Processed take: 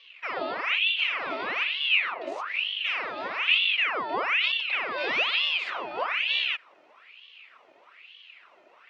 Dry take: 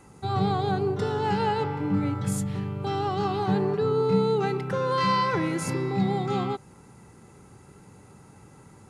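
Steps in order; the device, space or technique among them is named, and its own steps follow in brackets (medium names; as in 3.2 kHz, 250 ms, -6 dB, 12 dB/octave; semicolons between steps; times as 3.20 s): voice changer toy (ring modulator with a swept carrier 1.8 kHz, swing 75%, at 1.1 Hz; cabinet simulation 530–4100 Hz, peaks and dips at 840 Hz -7 dB, 1.6 kHz -7 dB, 2.6 kHz +6 dB); trim +1 dB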